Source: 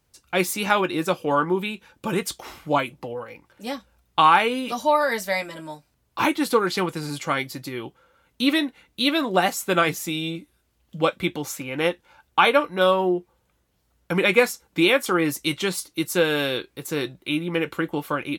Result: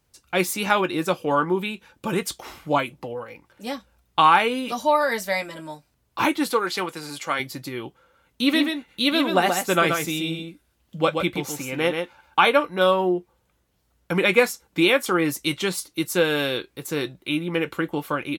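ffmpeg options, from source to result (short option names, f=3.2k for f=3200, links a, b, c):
-filter_complex "[0:a]asettb=1/sr,asplit=3[a][b][c];[a]atrim=end=6.514[d];[b]atrim=start=6.51:end=7.4,asetpts=PTS-STARTPTS,afade=t=in:d=0.004:c=qsin,afade=t=out:st=0.886:d=0.004:c=qsin,highpass=f=490:p=1[e];[c]atrim=start=7.396[f];[d][e]acrossfade=d=0.004:c1=hsin:c2=qsin[g];[g][f]acrossfade=d=0.004:c1=qsin:c2=hsin,asplit=3[h][i][j];[h]afade=t=out:st=8.49:d=0.02[k];[i]aecho=1:1:130:0.531,afade=t=in:st=8.49:d=0.02,afade=t=out:st=12.48:d=0.02[l];[j]afade=t=in:st=12.48:d=0.02[m];[k][l][m]amix=inputs=3:normalize=0"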